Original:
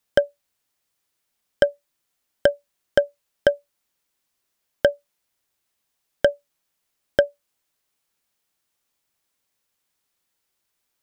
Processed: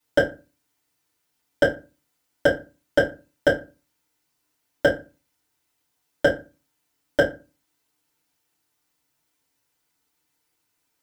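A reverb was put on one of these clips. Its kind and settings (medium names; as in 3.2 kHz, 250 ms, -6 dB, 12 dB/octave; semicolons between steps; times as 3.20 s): FDN reverb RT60 0.3 s, low-frequency decay 1.35×, high-frequency decay 0.7×, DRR -9.5 dB; trim -6.5 dB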